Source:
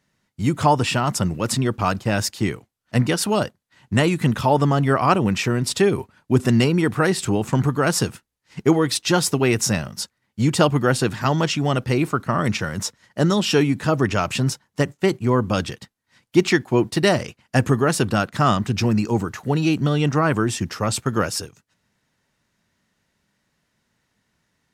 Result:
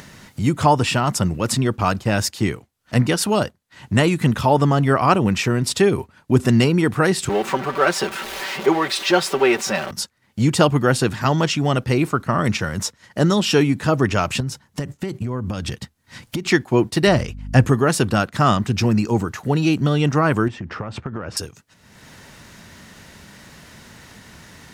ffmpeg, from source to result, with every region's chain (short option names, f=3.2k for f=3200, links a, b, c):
-filter_complex "[0:a]asettb=1/sr,asplit=3[a][b][c];[a]atrim=end=7.294[d];[b]atrim=start=7.29:end=9.91,asetpts=PTS-STARTPTS,afade=t=in:d=0.004:c=qsin,afade=t=out:st=2.616:d=0.004:c=qsin,aeval=exprs='val(0)+0.5*0.0668*sgn(val(0))':c=same,acrossover=split=310 4100:gain=0.0891 1 0.224[e][f][g];[e][f][g]amix=inputs=3:normalize=0,aecho=1:1:5.2:0.67,atrim=end_sample=115542[h];[c]atrim=start=9.906[i];[d][h]acrossfade=d=0.004:c1=hsin:c2=qsin[j];[j][i]acrossfade=d=0.004:c1=qsin:c2=hsin,asettb=1/sr,asplit=3[k][l][m];[k]atrim=end=14.404[n];[l]atrim=start=14.4:end=16.49,asetpts=PTS-STARTPTS,afade=t=in:d=0.004:c=qsin,afade=t=out:st=2.086:d=0.004:c=qsin,bass=f=250:g=6,treble=f=4k:g=1,acompressor=threshold=-23dB:ratio=10:attack=3.2:release=140:knee=1:detection=peak[o];[m]atrim=start=16.486[p];[n][o]acrossfade=d=0.004:c1=hsin:c2=qsin[q];[q][p]acrossfade=d=0.004:c1=qsin:c2=hsin,asettb=1/sr,asplit=3[r][s][t];[r]atrim=end=17.074[u];[s]atrim=start=17.07:end=17.66,asetpts=PTS-STARTPTS,afade=t=in:d=0.004:c=qsin,afade=t=out:st=0.586:d=0.004:c=qsin,acrossover=split=5800[v][w];[w]acompressor=threshold=-43dB:ratio=4:attack=1:release=60[x];[v][x]amix=inputs=2:normalize=0,equalizer=f=86:t=o:w=1.9:g=6.5,aeval=exprs='val(0)+0.0178*(sin(2*PI*50*n/s)+sin(2*PI*2*50*n/s)/2+sin(2*PI*3*50*n/s)/3+sin(2*PI*4*50*n/s)/4+sin(2*PI*5*50*n/s)/5)':c=same[y];[t]atrim=start=17.656[z];[u][y]acrossfade=d=0.004:c1=hsin:c2=qsin[aa];[aa][z]acrossfade=d=0.004:c1=qsin:c2=hsin,asettb=1/sr,asplit=3[ab][ac][ad];[ab]atrim=end=20.484[ae];[ac]atrim=start=20.48:end=21.37,asetpts=PTS-STARTPTS,afade=t=in:d=0.004:c=qsin,afade=t=out:st=0.886:d=0.004:c=qsin,lowpass=2k,acompressor=threshold=-27dB:ratio=10:attack=3.2:release=140:knee=1:detection=peak[af];[ad]atrim=start=21.366[ag];[ae][af]acrossfade=d=0.004:c1=hsin:c2=qsin[ah];[ah][ag]acrossfade=d=0.004:c1=qsin:c2=hsin,equalizer=f=77:t=o:w=0.32:g=4.5,acompressor=mode=upward:threshold=-24dB:ratio=2.5,volume=1.5dB"